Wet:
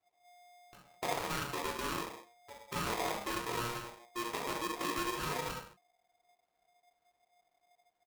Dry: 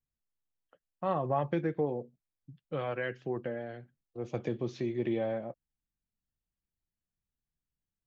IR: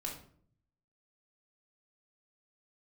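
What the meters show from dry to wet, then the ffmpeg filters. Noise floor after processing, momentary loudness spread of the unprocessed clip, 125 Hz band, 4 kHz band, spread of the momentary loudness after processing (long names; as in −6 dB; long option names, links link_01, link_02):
−80 dBFS, 14 LU, −8.0 dB, +13.0 dB, 10 LU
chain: -filter_complex "[0:a]equalizer=frequency=130:width=2.3:gain=-12,aecho=1:1:5.4:0.5,acompressor=threshold=-41dB:ratio=6,acrusher=samples=39:mix=1:aa=0.000001:lfo=1:lforange=39:lforate=2.1[link_01];[1:a]atrim=start_sample=2205,afade=type=out:start_time=0.27:duration=0.01,atrim=end_sample=12348,asetrate=39249,aresample=44100[link_02];[link_01][link_02]afir=irnorm=-1:irlink=0,aeval=exprs='val(0)*sgn(sin(2*PI*710*n/s))':channel_layout=same,volume=5.5dB"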